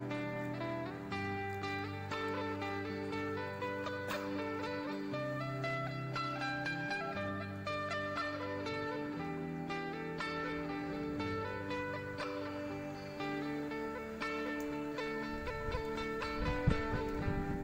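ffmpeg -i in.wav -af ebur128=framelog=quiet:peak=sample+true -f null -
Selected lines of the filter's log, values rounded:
Integrated loudness:
  I:         -39.2 LUFS
  Threshold: -49.2 LUFS
Loudness range:
  LRA:         1.9 LU
  Threshold: -59.4 LUFS
  LRA low:   -40.3 LUFS
  LRA high:  -38.4 LUFS
Sample peak:
  Peak:      -18.2 dBFS
True peak:
  Peak:      -18.2 dBFS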